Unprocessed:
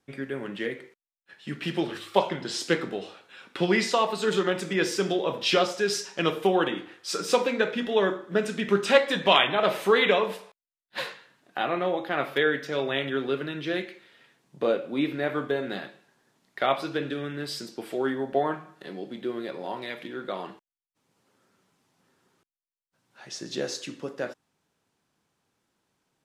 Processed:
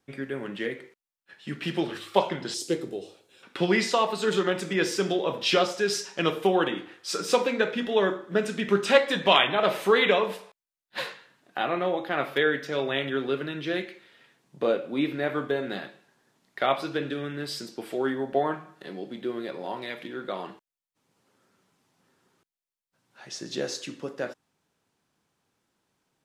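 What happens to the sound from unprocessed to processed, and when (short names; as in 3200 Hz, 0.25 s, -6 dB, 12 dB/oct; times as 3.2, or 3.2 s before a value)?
2.54–3.43 EQ curve 130 Hz 0 dB, 200 Hz -7 dB, 370 Hz +1 dB, 1400 Hz -17 dB, 9100 Hz +4 dB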